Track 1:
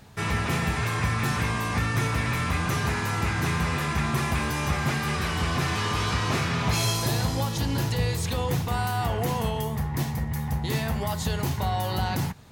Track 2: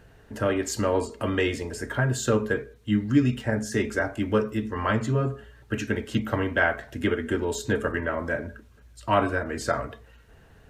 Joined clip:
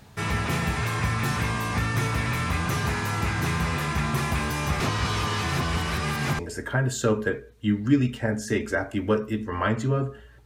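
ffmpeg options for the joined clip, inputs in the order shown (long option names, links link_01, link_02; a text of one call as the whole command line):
ffmpeg -i cue0.wav -i cue1.wav -filter_complex "[0:a]apad=whole_dur=10.45,atrim=end=10.45,asplit=2[link_01][link_02];[link_01]atrim=end=4.802[link_03];[link_02]atrim=start=4.798:end=6.392,asetpts=PTS-STARTPTS,areverse[link_04];[1:a]atrim=start=1.628:end=5.69[link_05];[link_03][link_04]acrossfade=duration=0.004:curve1=hsin:curve2=hsin[link_06];[link_06][link_05]acrossfade=duration=0.004:curve1=hsin:curve2=hsin" out.wav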